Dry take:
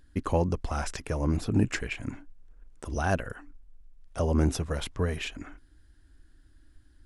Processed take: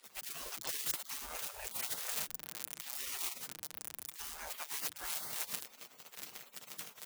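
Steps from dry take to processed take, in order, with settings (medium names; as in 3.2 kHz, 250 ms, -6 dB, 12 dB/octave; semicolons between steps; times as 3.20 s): zero-crossing glitches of -27 dBFS; comb 6.8 ms, depth 70%; reverse; compression 10:1, threshold -33 dBFS, peak gain reduction 16 dB; reverse; frequency shift +29 Hz; spectral gate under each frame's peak -25 dB weak; trim +9.5 dB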